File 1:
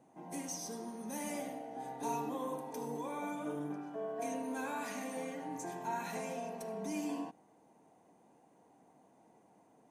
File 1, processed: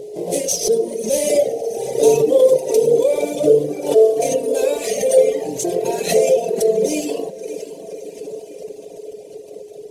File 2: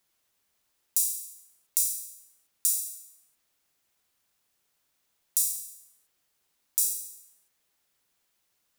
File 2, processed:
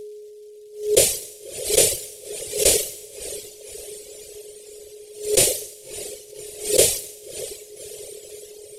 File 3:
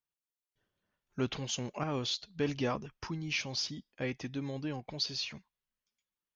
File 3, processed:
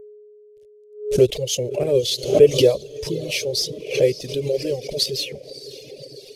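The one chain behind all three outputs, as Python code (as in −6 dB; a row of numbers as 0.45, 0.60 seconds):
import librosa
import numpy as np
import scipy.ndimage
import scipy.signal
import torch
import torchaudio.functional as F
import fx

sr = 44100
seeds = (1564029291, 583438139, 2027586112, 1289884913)

p1 = fx.cvsd(x, sr, bps=64000)
p2 = fx.curve_eq(p1, sr, hz=(120.0, 270.0, 400.0, 570.0, 830.0, 1400.0, 2100.0, 3200.0, 7000.0), db=(0, -12, 11, 10, -17, -23, -8, -2, 0))
p3 = p2 + fx.echo_diffused(p2, sr, ms=584, feedback_pct=59, wet_db=-11, dry=0)
p4 = p3 + 10.0 ** (-52.0 / 20.0) * np.sin(2.0 * np.pi * 420.0 * np.arange(len(p3)) / sr)
p5 = fx.dereverb_blind(p4, sr, rt60_s=1.8)
p6 = fx.pre_swell(p5, sr, db_per_s=120.0)
y = p6 * 10.0 ** (-1.5 / 20.0) / np.max(np.abs(p6))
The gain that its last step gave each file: +22.5, +18.5, +13.0 decibels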